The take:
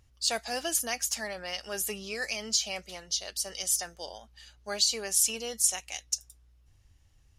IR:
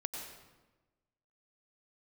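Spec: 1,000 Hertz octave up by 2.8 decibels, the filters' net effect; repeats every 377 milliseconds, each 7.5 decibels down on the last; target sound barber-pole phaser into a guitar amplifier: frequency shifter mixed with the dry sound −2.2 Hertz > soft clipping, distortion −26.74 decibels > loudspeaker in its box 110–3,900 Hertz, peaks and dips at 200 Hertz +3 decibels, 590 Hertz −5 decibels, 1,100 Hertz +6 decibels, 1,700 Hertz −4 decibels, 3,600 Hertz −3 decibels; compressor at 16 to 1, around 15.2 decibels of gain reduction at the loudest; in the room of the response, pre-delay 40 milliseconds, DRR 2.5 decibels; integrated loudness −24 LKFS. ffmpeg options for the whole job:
-filter_complex "[0:a]equalizer=frequency=1000:width_type=o:gain=4,acompressor=threshold=-35dB:ratio=16,aecho=1:1:377|754|1131|1508|1885:0.422|0.177|0.0744|0.0312|0.0131,asplit=2[link_01][link_02];[1:a]atrim=start_sample=2205,adelay=40[link_03];[link_02][link_03]afir=irnorm=-1:irlink=0,volume=-3dB[link_04];[link_01][link_04]amix=inputs=2:normalize=0,asplit=2[link_05][link_06];[link_06]afreqshift=-2.2[link_07];[link_05][link_07]amix=inputs=2:normalize=1,asoftclip=threshold=-25.5dB,highpass=110,equalizer=frequency=200:width_type=q:width=4:gain=3,equalizer=frequency=590:width_type=q:width=4:gain=-5,equalizer=frequency=1100:width_type=q:width=4:gain=6,equalizer=frequency=1700:width_type=q:width=4:gain=-4,equalizer=frequency=3600:width_type=q:width=4:gain=-3,lowpass=frequency=3900:width=0.5412,lowpass=frequency=3900:width=1.3066,volume=20.5dB"

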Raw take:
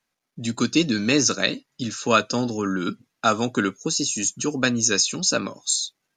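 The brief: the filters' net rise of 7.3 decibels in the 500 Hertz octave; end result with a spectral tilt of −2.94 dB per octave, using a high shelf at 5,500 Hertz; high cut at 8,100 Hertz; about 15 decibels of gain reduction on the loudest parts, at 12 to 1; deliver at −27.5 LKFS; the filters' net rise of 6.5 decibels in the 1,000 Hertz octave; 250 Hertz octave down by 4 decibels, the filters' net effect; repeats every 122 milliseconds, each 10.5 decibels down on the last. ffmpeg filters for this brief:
ffmpeg -i in.wav -af "lowpass=8100,equalizer=frequency=250:width_type=o:gain=-8.5,equalizer=frequency=500:width_type=o:gain=9,equalizer=frequency=1000:width_type=o:gain=8,highshelf=frequency=5500:gain=-7,acompressor=threshold=-22dB:ratio=12,aecho=1:1:122|244|366:0.299|0.0896|0.0269,volume=0.5dB" out.wav

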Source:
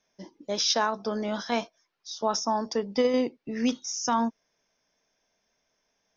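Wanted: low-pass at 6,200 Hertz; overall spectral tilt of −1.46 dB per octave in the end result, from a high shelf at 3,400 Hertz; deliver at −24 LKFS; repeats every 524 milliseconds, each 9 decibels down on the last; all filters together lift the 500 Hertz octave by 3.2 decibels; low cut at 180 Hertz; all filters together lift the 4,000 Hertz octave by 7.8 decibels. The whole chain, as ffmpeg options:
ffmpeg -i in.wav -af "highpass=180,lowpass=6200,equalizer=frequency=500:width_type=o:gain=3.5,highshelf=frequency=3400:gain=6,equalizer=frequency=4000:width_type=o:gain=7,aecho=1:1:524|1048|1572|2096:0.355|0.124|0.0435|0.0152" out.wav

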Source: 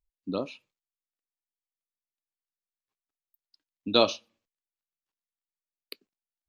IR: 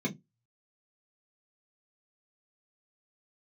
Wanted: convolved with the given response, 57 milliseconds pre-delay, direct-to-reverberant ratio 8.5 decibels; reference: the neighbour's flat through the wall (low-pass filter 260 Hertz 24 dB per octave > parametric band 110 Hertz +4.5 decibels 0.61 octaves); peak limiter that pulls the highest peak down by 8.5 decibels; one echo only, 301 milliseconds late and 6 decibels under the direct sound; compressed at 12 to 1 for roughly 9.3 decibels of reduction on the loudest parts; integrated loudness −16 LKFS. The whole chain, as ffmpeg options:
-filter_complex "[0:a]acompressor=threshold=-24dB:ratio=12,alimiter=limit=-20dB:level=0:latency=1,aecho=1:1:301:0.501,asplit=2[link_01][link_02];[1:a]atrim=start_sample=2205,adelay=57[link_03];[link_02][link_03]afir=irnorm=-1:irlink=0,volume=-14dB[link_04];[link_01][link_04]amix=inputs=2:normalize=0,lowpass=frequency=260:width=0.5412,lowpass=frequency=260:width=1.3066,equalizer=frequency=110:width_type=o:width=0.61:gain=4.5,volume=22.5dB"

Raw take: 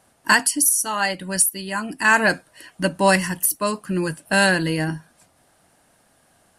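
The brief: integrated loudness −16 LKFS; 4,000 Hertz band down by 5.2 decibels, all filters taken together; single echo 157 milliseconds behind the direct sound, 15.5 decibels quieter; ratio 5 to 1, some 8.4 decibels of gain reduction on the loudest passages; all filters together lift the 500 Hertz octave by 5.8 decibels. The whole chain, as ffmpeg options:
ffmpeg -i in.wav -af "equalizer=frequency=500:width_type=o:gain=7.5,equalizer=frequency=4000:width_type=o:gain=-7,acompressor=threshold=-17dB:ratio=5,aecho=1:1:157:0.168,volume=6.5dB" out.wav

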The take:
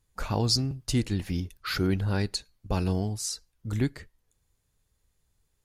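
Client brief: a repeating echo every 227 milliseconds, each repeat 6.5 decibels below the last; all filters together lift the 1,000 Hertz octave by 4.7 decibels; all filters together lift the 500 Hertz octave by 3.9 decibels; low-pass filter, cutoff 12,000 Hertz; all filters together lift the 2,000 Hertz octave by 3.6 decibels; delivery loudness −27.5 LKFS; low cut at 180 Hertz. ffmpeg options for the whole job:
ffmpeg -i in.wav -af "highpass=180,lowpass=12000,equalizer=frequency=500:width_type=o:gain=4.5,equalizer=frequency=1000:width_type=o:gain=4,equalizer=frequency=2000:width_type=o:gain=3,aecho=1:1:227|454|681|908|1135|1362:0.473|0.222|0.105|0.0491|0.0231|0.0109,volume=1.5dB" out.wav

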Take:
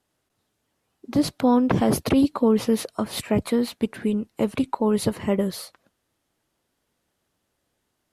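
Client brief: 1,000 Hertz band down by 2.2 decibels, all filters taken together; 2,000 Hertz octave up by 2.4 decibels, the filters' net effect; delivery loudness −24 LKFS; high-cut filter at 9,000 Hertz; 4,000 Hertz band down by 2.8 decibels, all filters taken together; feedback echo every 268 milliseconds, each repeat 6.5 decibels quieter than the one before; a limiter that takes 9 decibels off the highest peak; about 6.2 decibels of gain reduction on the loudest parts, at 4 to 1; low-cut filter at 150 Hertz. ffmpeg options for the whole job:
ffmpeg -i in.wav -af "highpass=150,lowpass=9000,equalizer=frequency=1000:width_type=o:gain=-3.5,equalizer=frequency=2000:width_type=o:gain=5,equalizer=frequency=4000:width_type=o:gain=-4.5,acompressor=threshold=-22dB:ratio=4,alimiter=limit=-20.5dB:level=0:latency=1,aecho=1:1:268|536|804|1072|1340|1608:0.473|0.222|0.105|0.0491|0.0231|0.0109,volume=6.5dB" out.wav

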